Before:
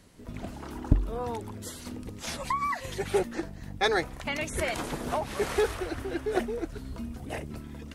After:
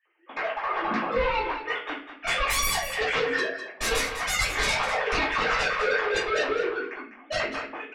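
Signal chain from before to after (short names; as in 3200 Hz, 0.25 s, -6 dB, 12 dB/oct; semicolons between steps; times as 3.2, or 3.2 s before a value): sine-wave speech; HPF 1200 Hz 12 dB/oct; gate -58 dBFS, range -22 dB; tilt -2 dB/oct; compressor 2:1, threshold -47 dBFS, peak gain reduction 14.5 dB; sine folder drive 19 dB, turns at -28.5 dBFS; echo 0.201 s -10.5 dB; reverb RT60 0.40 s, pre-delay 4 ms, DRR -11 dB; gain -7.5 dB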